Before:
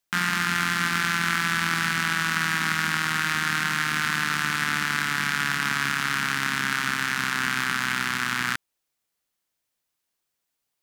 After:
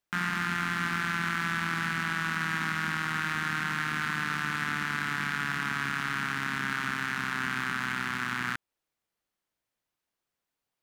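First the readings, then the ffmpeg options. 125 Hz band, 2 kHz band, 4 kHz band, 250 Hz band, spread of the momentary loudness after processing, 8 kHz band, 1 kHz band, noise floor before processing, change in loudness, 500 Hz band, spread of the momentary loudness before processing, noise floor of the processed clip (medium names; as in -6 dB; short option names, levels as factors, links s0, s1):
-3.0 dB, -6.0 dB, -9.5 dB, -3.5 dB, 2 LU, -12.0 dB, -5.0 dB, -81 dBFS, -6.0 dB, -4.0 dB, 2 LU, under -85 dBFS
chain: -filter_complex "[0:a]highshelf=f=3300:g=-10,asplit=2[s0][s1];[s1]alimiter=limit=0.1:level=0:latency=1:release=166,volume=1.06[s2];[s0][s2]amix=inputs=2:normalize=0,asoftclip=type=tanh:threshold=0.335,volume=0.473"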